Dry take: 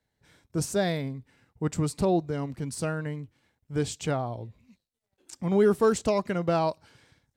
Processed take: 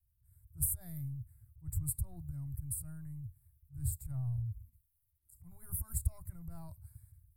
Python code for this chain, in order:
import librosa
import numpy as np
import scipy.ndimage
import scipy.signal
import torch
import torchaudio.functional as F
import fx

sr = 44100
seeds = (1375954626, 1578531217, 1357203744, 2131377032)

y = fx.transient(x, sr, attack_db=-10, sustain_db=6)
y = fx.wow_flutter(y, sr, seeds[0], rate_hz=2.1, depth_cents=29.0)
y = scipy.signal.sosfilt(scipy.signal.cheby2(4, 40, [190.0, 6500.0], 'bandstop', fs=sr, output='sos'), y)
y = F.gain(torch.from_numpy(y), 10.0).numpy()